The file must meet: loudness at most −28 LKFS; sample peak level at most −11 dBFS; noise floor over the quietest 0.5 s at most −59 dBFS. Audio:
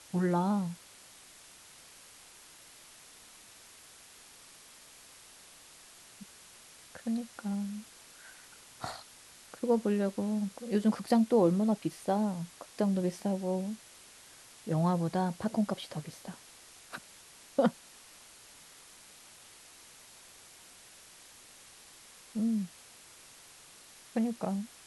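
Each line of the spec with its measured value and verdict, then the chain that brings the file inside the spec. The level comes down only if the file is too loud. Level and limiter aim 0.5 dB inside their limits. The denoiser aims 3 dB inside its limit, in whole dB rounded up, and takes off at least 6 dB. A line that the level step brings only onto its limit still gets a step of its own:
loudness −32.0 LKFS: in spec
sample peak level −14.5 dBFS: in spec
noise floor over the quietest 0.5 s −55 dBFS: out of spec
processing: broadband denoise 7 dB, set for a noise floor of −55 dBFS

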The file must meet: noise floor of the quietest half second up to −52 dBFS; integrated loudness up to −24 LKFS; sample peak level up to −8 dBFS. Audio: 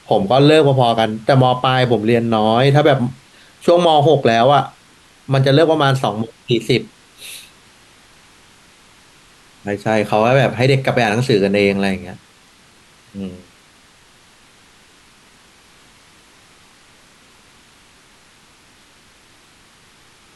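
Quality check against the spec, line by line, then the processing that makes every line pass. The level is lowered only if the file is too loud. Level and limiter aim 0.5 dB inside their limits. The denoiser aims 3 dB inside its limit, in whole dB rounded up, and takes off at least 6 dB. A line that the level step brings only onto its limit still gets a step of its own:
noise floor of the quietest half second −49 dBFS: out of spec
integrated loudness −15.0 LKFS: out of spec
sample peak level −2.0 dBFS: out of spec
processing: level −9.5 dB

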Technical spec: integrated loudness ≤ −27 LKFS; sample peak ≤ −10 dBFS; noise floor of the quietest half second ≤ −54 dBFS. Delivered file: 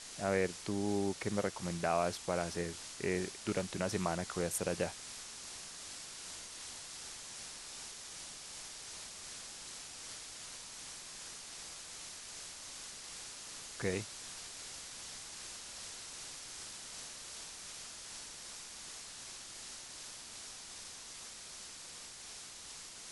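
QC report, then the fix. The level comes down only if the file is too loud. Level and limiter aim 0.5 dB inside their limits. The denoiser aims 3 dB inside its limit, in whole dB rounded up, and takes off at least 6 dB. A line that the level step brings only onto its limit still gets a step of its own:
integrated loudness −41.0 LKFS: in spec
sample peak −17.5 dBFS: in spec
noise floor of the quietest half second −50 dBFS: out of spec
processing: broadband denoise 7 dB, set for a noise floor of −50 dBFS

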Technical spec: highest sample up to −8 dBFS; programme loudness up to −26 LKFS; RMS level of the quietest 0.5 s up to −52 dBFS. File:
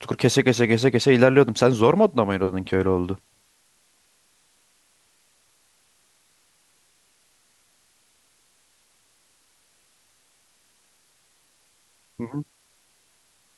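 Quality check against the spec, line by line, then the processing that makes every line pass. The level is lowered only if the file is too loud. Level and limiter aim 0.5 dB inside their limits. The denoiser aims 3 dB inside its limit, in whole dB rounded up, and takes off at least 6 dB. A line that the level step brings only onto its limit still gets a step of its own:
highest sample −3.0 dBFS: out of spec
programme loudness −20.5 LKFS: out of spec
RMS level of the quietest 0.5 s −63 dBFS: in spec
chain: level −6 dB

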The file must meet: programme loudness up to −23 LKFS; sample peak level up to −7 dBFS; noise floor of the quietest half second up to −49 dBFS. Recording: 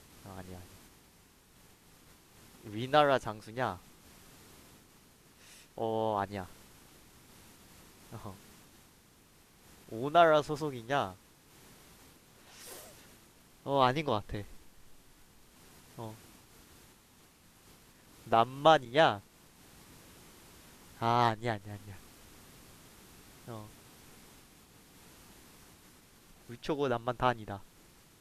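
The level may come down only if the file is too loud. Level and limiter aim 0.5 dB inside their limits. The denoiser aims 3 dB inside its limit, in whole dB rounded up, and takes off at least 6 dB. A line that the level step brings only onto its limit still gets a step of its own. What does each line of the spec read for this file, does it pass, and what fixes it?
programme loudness −30.5 LKFS: in spec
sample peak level −9.5 dBFS: in spec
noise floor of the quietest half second −62 dBFS: in spec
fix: no processing needed

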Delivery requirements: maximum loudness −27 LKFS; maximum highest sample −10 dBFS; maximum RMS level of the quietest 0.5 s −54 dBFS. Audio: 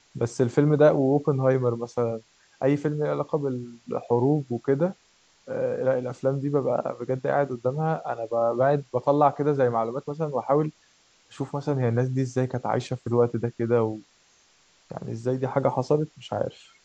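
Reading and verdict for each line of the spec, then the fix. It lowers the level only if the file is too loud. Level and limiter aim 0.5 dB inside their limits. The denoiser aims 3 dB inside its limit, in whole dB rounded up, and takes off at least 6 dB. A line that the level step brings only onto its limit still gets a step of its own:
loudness −25.5 LKFS: out of spec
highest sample −7.0 dBFS: out of spec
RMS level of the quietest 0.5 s −61 dBFS: in spec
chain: level −2 dB
brickwall limiter −10.5 dBFS

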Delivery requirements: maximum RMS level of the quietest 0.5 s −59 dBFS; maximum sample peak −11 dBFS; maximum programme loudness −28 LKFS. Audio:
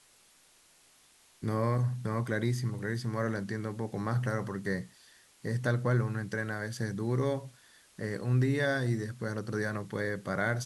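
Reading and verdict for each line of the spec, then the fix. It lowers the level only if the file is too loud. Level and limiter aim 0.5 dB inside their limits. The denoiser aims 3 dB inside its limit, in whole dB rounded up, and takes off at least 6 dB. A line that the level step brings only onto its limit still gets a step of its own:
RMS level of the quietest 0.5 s −63 dBFS: in spec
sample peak −15.0 dBFS: in spec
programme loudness −32.5 LKFS: in spec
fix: no processing needed

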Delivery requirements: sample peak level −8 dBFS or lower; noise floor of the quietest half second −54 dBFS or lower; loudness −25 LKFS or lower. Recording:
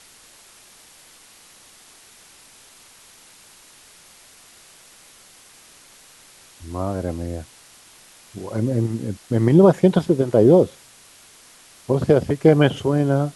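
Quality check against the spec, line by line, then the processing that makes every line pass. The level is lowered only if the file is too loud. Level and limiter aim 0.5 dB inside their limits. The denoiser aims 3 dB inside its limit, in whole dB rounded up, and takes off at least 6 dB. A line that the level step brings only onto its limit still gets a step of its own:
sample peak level −2.5 dBFS: out of spec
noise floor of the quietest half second −49 dBFS: out of spec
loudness −18.5 LKFS: out of spec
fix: level −7 dB

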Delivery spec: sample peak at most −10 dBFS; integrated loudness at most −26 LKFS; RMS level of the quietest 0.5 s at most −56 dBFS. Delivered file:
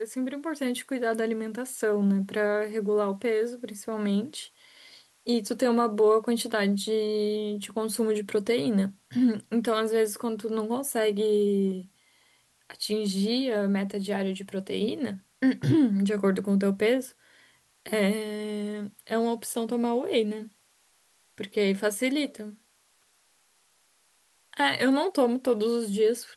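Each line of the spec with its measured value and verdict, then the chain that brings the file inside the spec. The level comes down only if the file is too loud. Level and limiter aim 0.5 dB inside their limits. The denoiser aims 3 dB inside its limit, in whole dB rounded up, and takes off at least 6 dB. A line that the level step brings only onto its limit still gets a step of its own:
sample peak −11.5 dBFS: in spec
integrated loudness −27.0 LKFS: in spec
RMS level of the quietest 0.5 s −66 dBFS: in spec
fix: no processing needed

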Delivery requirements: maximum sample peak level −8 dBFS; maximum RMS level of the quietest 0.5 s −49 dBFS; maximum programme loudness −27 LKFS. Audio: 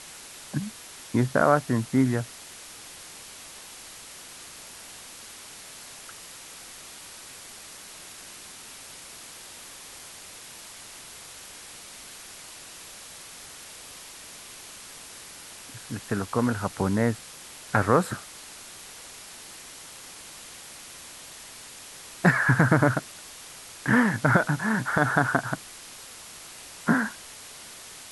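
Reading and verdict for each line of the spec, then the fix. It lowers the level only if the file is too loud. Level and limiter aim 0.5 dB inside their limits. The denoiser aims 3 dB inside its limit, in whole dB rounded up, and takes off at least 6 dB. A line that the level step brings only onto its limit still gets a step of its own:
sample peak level −5.5 dBFS: out of spec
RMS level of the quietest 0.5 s −44 dBFS: out of spec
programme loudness −25.0 LKFS: out of spec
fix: broadband denoise 6 dB, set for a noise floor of −44 dBFS
level −2.5 dB
brickwall limiter −8.5 dBFS

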